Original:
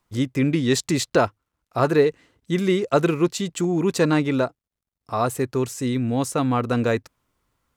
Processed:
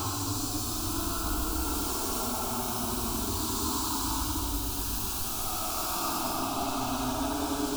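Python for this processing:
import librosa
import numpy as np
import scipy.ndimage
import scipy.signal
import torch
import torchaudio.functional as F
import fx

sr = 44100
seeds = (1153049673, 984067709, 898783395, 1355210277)

p1 = np.sign(x) * np.sqrt(np.mean(np.square(x)))
p2 = p1 + fx.echo_alternate(p1, sr, ms=277, hz=940.0, feedback_pct=86, wet_db=-5.5, dry=0)
p3 = fx.paulstretch(p2, sr, seeds[0], factor=14.0, window_s=0.1, from_s=1.31)
p4 = fx.fixed_phaser(p3, sr, hz=520.0, stages=6)
y = F.gain(torch.from_numpy(p4), -6.0).numpy()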